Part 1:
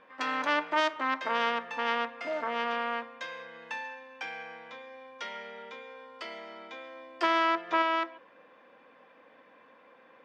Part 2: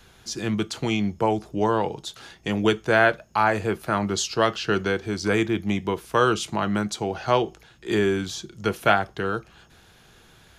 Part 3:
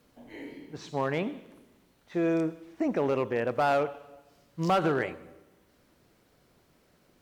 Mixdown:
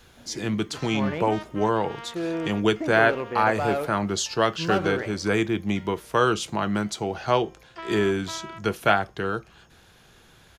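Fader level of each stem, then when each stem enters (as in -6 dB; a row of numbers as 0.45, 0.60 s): -12.0, -1.0, -2.0 dB; 0.55, 0.00, 0.00 s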